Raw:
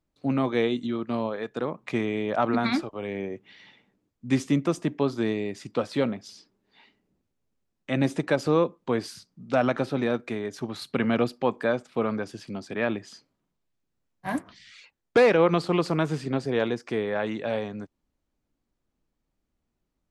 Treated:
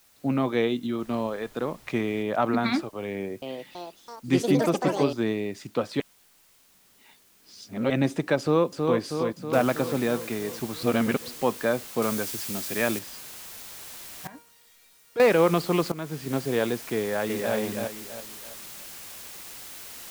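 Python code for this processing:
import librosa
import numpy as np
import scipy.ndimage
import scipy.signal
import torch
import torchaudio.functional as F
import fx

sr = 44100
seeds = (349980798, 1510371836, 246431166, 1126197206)

y = fx.dmg_noise_colour(x, sr, seeds[0], colour='pink', level_db=-55.0, at=(0.98, 2.22), fade=0.02)
y = fx.echo_pitch(y, sr, ms=330, semitones=5, count=3, db_per_echo=-3.0, at=(3.09, 5.37))
y = fx.echo_throw(y, sr, start_s=8.4, length_s=0.6, ms=320, feedback_pct=65, wet_db=-4.0)
y = fx.noise_floor_step(y, sr, seeds[1], at_s=9.53, before_db=-60, after_db=-42, tilt_db=0.0)
y = fx.high_shelf(y, sr, hz=3100.0, db=8.5, at=(12.02, 12.99))
y = fx.comb_fb(y, sr, f0_hz=470.0, decay_s=0.59, harmonics='all', damping=0.0, mix_pct=90, at=(14.27, 15.2))
y = fx.echo_throw(y, sr, start_s=16.96, length_s=0.58, ms=330, feedback_pct=35, wet_db=-3.5)
y = fx.edit(y, sr, fx.reverse_span(start_s=6.0, length_s=1.9),
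    fx.reverse_span(start_s=10.83, length_s=0.45),
    fx.fade_in_from(start_s=15.92, length_s=0.47, floor_db=-15.5), tone=tone)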